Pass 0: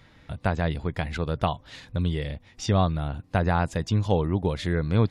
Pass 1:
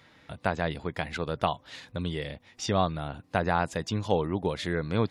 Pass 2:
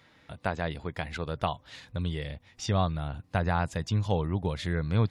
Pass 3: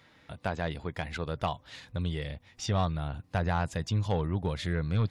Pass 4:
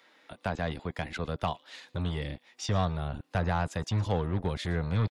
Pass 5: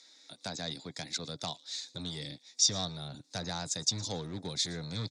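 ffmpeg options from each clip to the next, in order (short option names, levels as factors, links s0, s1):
-af "highpass=f=270:p=1"
-af "asubboost=boost=4:cutoff=150,volume=0.75"
-af "asoftclip=type=tanh:threshold=0.112"
-filter_complex "[0:a]acrossover=split=260|490|1800[s0][s1][s2][s3];[s0]acrusher=bits=5:mix=0:aa=0.5[s4];[s3]aecho=1:1:114:0.0891[s5];[s4][s1][s2][s5]amix=inputs=4:normalize=0"
-af "aexciter=amount=12.9:drive=8.4:freq=4500,highpass=f=110:w=0.5412,highpass=f=110:w=1.3066,equalizer=f=140:t=q:w=4:g=3,equalizer=f=280:t=q:w=4:g=6,equalizer=f=1100:t=q:w=4:g=-4,equalizer=f=2300:t=q:w=4:g=5,equalizer=f=3700:t=q:w=4:g=9,lowpass=f=6900:w=0.5412,lowpass=f=6900:w=1.3066,volume=0.355"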